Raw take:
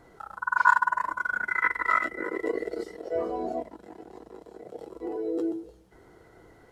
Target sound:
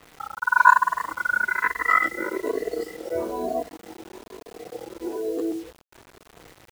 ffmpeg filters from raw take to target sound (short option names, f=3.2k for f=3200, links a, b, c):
-af "afftfilt=real='re*pow(10,11/40*sin(2*PI*(1.5*log(max(b,1)*sr/1024/100)/log(2)-(1.1)*(pts-256)/sr)))':imag='im*pow(10,11/40*sin(2*PI*(1.5*log(max(b,1)*sr/1024/100)/log(2)-(1.1)*(pts-256)/sr)))':win_size=1024:overlap=0.75,acrusher=bits=7:mix=0:aa=0.000001,adynamicequalizer=threshold=0.00891:dfrequency=5200:dqfactor=0.7:tfrequency=5200:tqfactor=0.7:attack=5:release=100:ratio=0.375:range=1.5:mode=boostabove:tftype=highshelf,volume=2dB"